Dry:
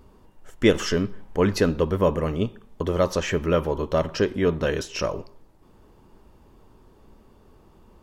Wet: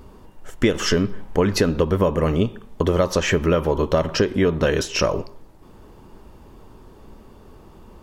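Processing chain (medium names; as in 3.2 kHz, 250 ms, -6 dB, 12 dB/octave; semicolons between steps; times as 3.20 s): compression 12:1, threshold -22 dBFS, peak gain reduction 11 dB; trim +8 dB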